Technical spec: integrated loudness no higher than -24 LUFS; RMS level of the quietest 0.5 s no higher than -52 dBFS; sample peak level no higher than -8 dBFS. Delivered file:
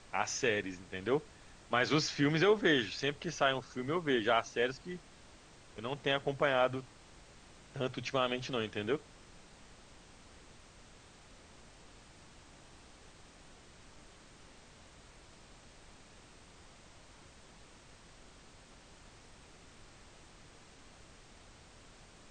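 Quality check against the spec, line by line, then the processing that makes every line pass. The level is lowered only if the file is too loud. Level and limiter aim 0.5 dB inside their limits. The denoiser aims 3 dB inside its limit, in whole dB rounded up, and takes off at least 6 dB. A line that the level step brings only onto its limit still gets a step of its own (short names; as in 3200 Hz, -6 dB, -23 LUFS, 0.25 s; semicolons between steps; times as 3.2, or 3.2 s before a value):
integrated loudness -33.0 LUFS: OK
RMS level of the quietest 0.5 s -57 dBFS: OK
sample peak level -14.5 dBFS: OK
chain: none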